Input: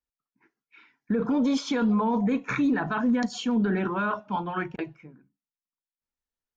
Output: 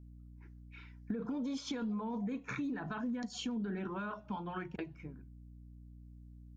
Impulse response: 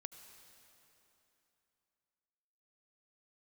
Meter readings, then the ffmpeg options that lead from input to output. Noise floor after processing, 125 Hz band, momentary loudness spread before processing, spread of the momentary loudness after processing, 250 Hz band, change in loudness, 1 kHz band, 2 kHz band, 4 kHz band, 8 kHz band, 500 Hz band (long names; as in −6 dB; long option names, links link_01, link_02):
−54 dBFS, −10.5 dB, 8 LU, 18 LU, −13.0 dB, −13.5 dB, −14.5 dB, −13.5 dB, −9.0 dB, can't be measured, −13.5 dB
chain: -af "aeval=exprs='val(0)+0.00224*(sin(2*PI*60*n/s)+sin(2*PI*2*60*n/s)/2+sin(2*PI*3*60*n/s)/3+sin(2*PI*4*60*n/s)/4+sin(2*PI*5*60*n/s)/5)':channel_layout=same,acompressor=threshold=-37dB:ratio=5,equalizer=frequency=1100:width=0.38:gain=-4.5,volume=1.5dB"